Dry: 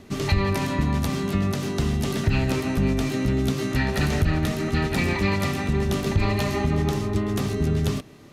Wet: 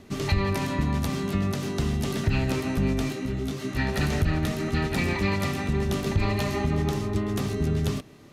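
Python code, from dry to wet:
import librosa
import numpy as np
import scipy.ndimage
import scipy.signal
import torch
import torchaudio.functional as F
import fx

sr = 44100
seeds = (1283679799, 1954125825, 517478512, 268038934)

y = fx.detune_double(x, sr, cents=36, at=(3.12, 3.77), fade=0.02)
y = F.gain(torch.from_numpy(y), -2.5).numpy()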